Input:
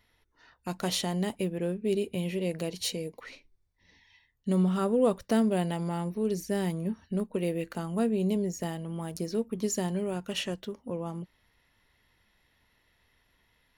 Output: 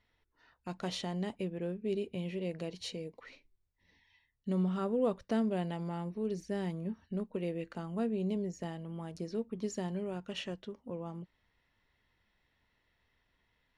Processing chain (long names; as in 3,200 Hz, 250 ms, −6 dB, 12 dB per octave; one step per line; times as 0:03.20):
high-frequency loss of the air 88 metres
level −6 dB